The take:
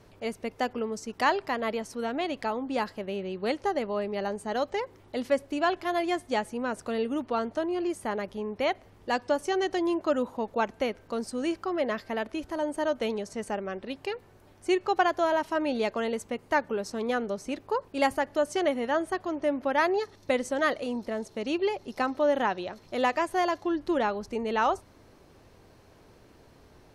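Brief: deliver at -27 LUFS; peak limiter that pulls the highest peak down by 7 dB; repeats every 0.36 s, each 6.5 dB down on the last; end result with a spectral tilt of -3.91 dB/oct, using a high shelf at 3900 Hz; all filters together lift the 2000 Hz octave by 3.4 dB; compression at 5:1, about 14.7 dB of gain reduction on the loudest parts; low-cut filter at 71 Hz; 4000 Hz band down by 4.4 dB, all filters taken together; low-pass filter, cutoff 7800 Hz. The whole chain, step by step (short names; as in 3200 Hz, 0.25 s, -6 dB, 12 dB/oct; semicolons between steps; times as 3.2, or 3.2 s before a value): HPF 71 Hz; LPF 7800 Hz; bell 2000 Hz +6.5 dB; high shelf 3900 Hz -4 dB; bell 4000 Hz -7.5 dB; compressor 5:1, threshold -35 dBFS; limiter -29 dBFS; feedback echo 0.36 s, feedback 47%, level -6.5 dB; gain +12 dB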